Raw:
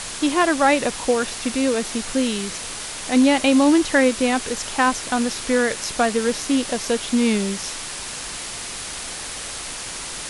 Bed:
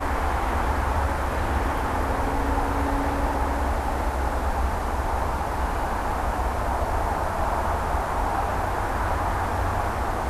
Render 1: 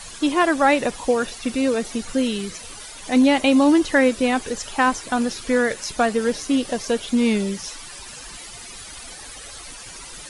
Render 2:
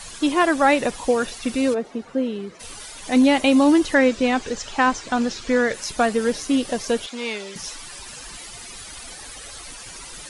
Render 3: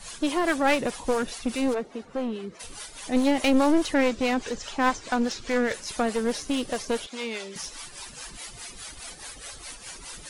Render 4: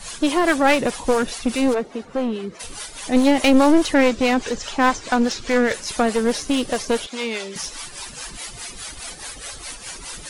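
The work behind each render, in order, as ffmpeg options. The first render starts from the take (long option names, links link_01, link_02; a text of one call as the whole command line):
ffmpeg -i in.wav -af "afftdn=noise_reduction=13:noise_floor=-32" out.wav
ffmpeg -i in.wav -filter_complex "[0:a]asplit=3[link_01][link_02][link_03];[link_01]afade=type=out:start_time=1.73:duration=0.02[link_04];[link_02]bandpass=frequency=490:width_type=q:width=0.63,afade=type=in:start_time=1.73:duration=0.02,afade=type=out:start_time=2.59:duration=0.02[link_05];[link_03]afade=type=in:start_time=2.59:duration=0.02[link_06];[link_04][link_05][link_06]amix=inputs=3:normalize=0,asettb=1/sr,asplit=3[link_07][link_08][link_09];[link_07]atrim=end=3.944[link_10];[link_08]atrim=start=3.94:end=5.74,asetpts=PTS-STARTPTS,afade=type=in:duration=0.004:curve=qsin,afade=type=out:start_time=1.796:duration=0.004:curve=qsin,lowpass=frequency=7400:width=0.5412,lowpass=frequency=7400:width=1.3066[link_11];[link_09]atrim=start=5.736[link_12];[link_10][link_11]acrossfade=duration=0.004:curve1=hsin:curve2=qsin[link_13];[link_13][link_12]acrossfade=duration=0.004:curve1=qsin:curve2=hsin,asettb=1/sr,asplit=3[link_14][link_15][link_16];[link_14]atrim=end=7.064[link_17];[link_15]atrim=start=7.06:end=7.56,asetpts=PTS-STARTPTS,afade=type=in:duration=0.004:curve=qsin,afade=type=out:start_time=0.496:duration=0.004:curve=qsin,highpass=600,lowpass=6300[link_18];[link_16]atrim=start=7.556[link_19];[link_17][link_18]acrossfade=duration=0.004:curve1=hsin:curve2=qsin[link_20];[link_20][link_19]acrossfade=duration=0.004:curve1=qsin:curve2=hsin" out.wav
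ffmpeg -i in.wav -filter_complex "[0:a]acrossover=split=460[link_01][link_02];[link_01]aeval=exprs='val(0)*(1-0.7/2+0.7/2*cos(2*PI*4.8*n/s))':channel_layout=same[link_03];[link_02]aeval=exprs='val(0)*(1-0.7/2-0.7/2*cos(2*PI*4.8*n/s))':channel_layout=same[link_04];[link_03][link_04]amix=inputs=2:normalize=0,aeval=exprs='clip(val(0),-1,0.0501)':channel_layout=same" out.wav
ffmpeg -i in.wav -af "volume=6.5dB,alimiter=limit=-3dB:level=0:latency=1" out.wav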